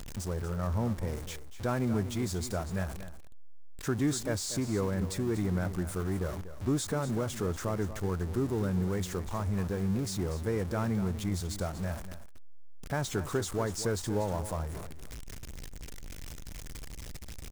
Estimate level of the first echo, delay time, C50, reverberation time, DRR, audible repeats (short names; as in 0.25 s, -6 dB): -12.5 dB, 0.24 s, none, none, none, 1